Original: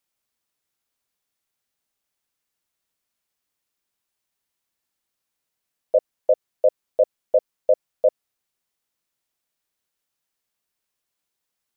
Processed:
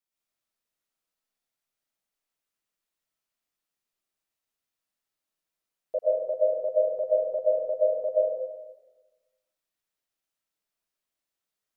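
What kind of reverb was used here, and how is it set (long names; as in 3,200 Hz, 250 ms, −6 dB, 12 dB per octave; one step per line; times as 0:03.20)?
comb and all-pass reverb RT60 1.2 s, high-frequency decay 0.7×, pre-delay 80 ms, DRR −5.5 dB
level −11.5 dB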